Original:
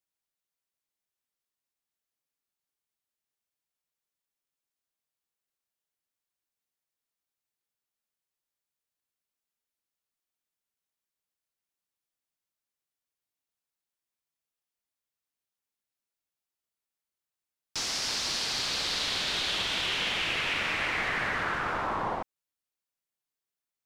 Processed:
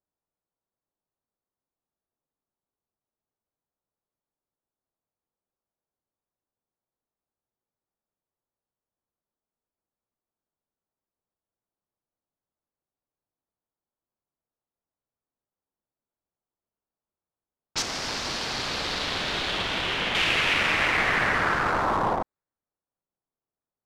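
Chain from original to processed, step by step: Wiener smoothing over 15 samples; low-pass opened by the level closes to 1100 Hz, open at -33 dBFS; 17.82–20.15 high shelf 2800 Hz -10.5 dB; gain +7.5 dB

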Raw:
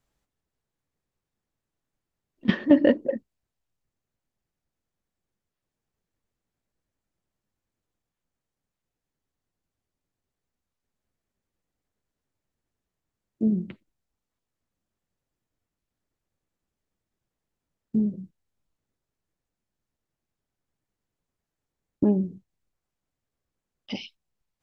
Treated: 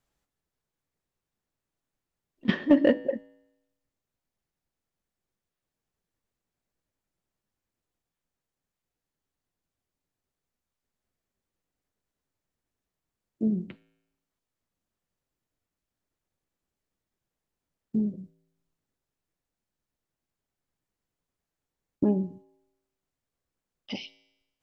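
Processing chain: low shelf 260 Hz -3 dB; resonator 55 Hz, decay 0.93 s, harmonics odd, mix 50%; in parallel at -3.5 dB: hard clip -16 dBFS, distortion -21 dB

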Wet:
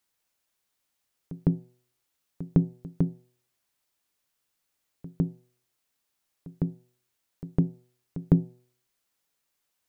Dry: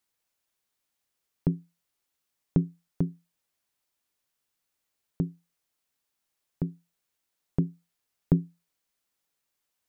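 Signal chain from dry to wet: de-hum 123.6 Hz, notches 7; pre-echo 0.156 s -16.5 dB; gain +2.5 dB

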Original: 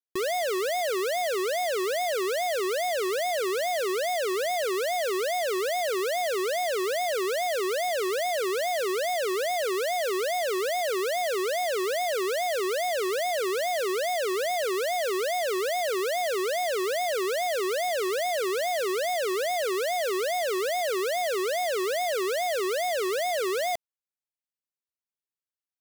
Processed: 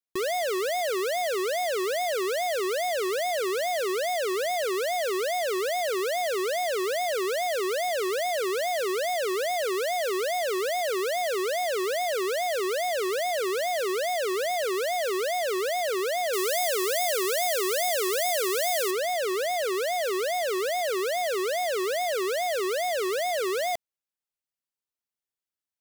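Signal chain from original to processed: 16.33–18.91 high shelf 5200 Hz +10.5 dB

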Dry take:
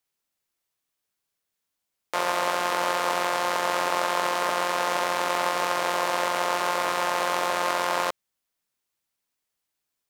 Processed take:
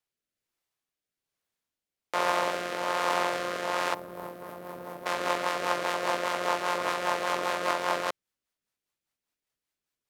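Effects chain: 3.94–5.06 EQ curve 140 Hz 0 dB, 2900 Hz -22 dB, 7100 Hz -21 dB, 15000 Hz +1 dB; rotary speaker horn 1.2 Hz, later 5 Hz, at 3.65; high shelf 5000 Hz -5.5 dB

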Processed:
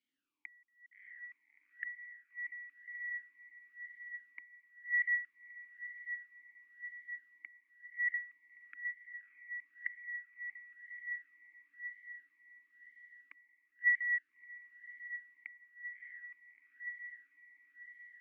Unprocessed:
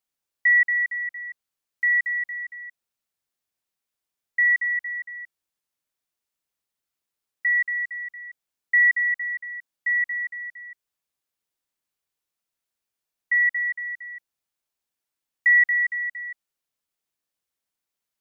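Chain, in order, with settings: flipped gate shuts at -26 dBFS, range -39 dB; diffused feedback echo 0.645 s, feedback 73%, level -9 dB; vowel sweep i-u 1 Hz; gain +13.5 dB

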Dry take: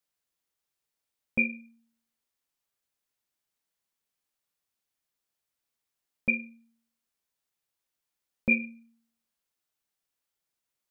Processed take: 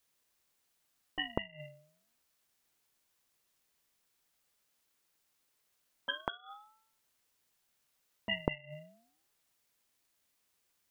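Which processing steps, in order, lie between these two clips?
bell 280 Hz -6.5 dB 0.56 oct; pre-echo 0.197 s -19 dB; flipped gate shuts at -27 dBFS, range -27 dB; ring modulator with a swept carrier 740 Hz, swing 50%, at 0.29 Hz; gain +11 dB

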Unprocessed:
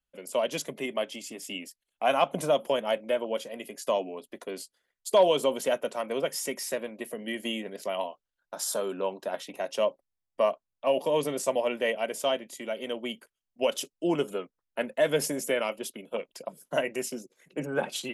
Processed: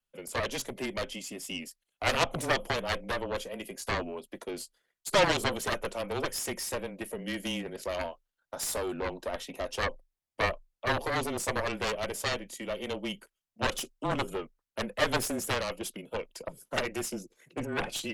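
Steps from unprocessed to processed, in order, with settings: added harmonics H 6 -13 dB, 7 -7 dB, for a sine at -10.5 dBFS; vibrato 1.5 Hz 13 cents; frequency shift -23 Hz; gain -6 dB

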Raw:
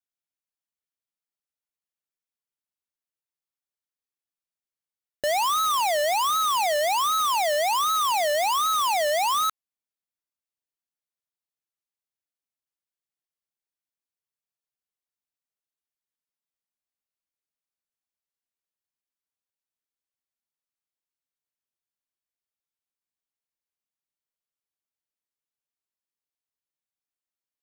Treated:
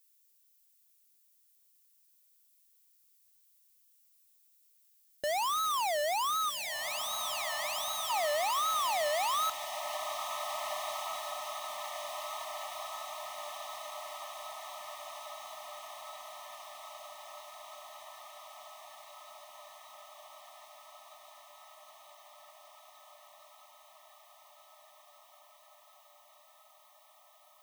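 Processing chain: added noise violet -60 dBFS; spectral gain 6.5–8.1, 270–1500 Hz -20 dB; diffused feedback echo 1.698 s, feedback 73%, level -7.5 dB; gain -8 dB

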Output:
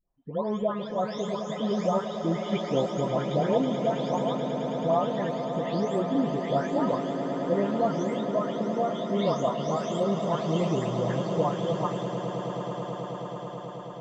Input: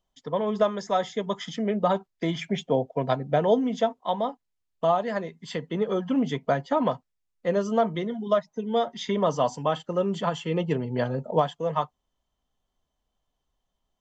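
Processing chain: spectral delay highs late, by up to 0.471 s; bell 1800 Hz -4.5 dB 2.7 oct; swelling echo 0.108 s, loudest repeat 8, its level -13 dB

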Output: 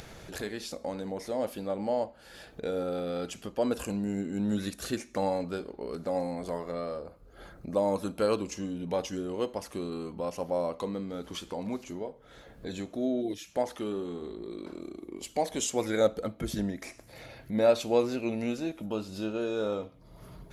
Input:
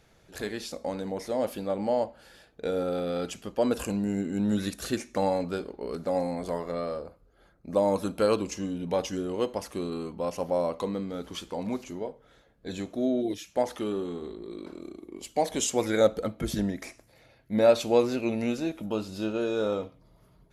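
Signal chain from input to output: upward compressor, threshold -30 dBFS; gain -3 dB

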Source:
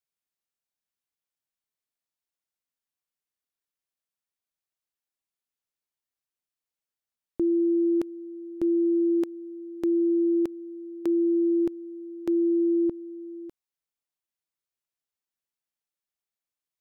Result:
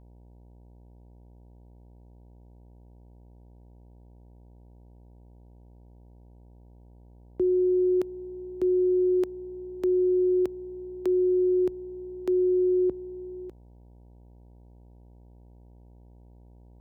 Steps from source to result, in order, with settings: frequency shift +26 Hz; buzz 60 Hz, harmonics 16, -52 dBFS -7 dB/oct

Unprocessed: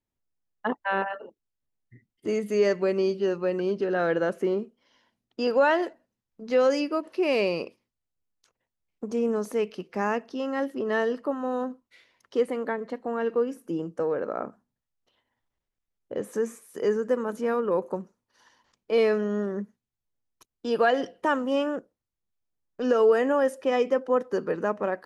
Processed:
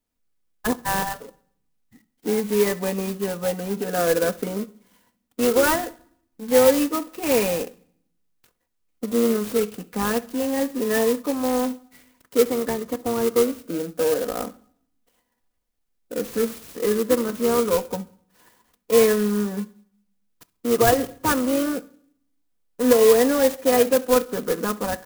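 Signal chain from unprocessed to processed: high shelf 7300 Hz +12 dB; comb 4.1 ms, depth 92%; in parallel at -10.5 dB: decimation with a swept rate 42×, swing 60% 0.25 Hz; on the sum: feedback echo 67 ms, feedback 31%, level -23.5 dB; on a send at -17.5 dB: reverb RT60 0.65 s, pre-delay 7 ms; on the sum: clock jitter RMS 0.069 ms

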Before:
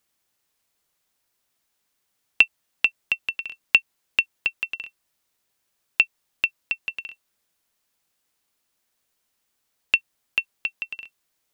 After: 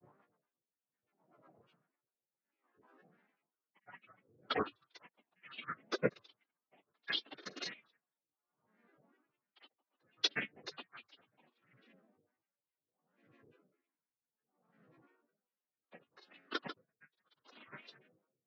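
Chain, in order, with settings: chord vocoder minor triad, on F#3; high shelf 4800 Hz -8 dB; plain phase-vocoder stretch 1.6×; compressor 4:1, threshold -33 dBFS, peak gain reduction 18 dB; on a send: dark delay 0.176 s, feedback 40%, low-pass 1700 Hz, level -19 dB; on the sum: LFO low-pass sine 1.3 Hz 740–1900 Hz; grains, pitch spread up and down by 12 st; rotary speaker horn 8 Hz, later 0.65 Hz, at 2.28; dB-linear tremolo 0.67 Hz, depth 39 dB; gain +17.5 dB

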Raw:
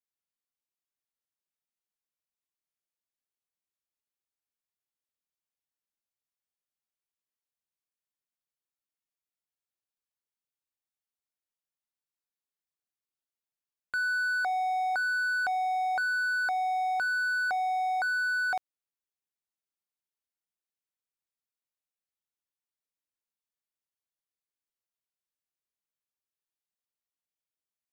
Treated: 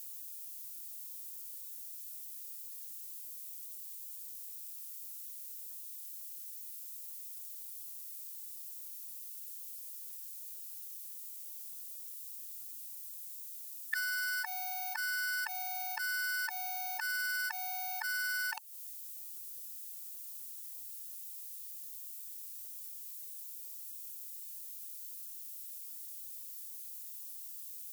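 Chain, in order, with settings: formant shift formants +3 st; added noise violet -60 dBFS; added harmonics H 8 -36 dB, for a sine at -14.5 dBFS; compressor 12:1, threshold -38 dBFS, peak gain reduction 14 dB; Bessel high-pass 1600 Hz, order 2; high shelf 4900 Hz +7.5 dB; gain +7.5 dB

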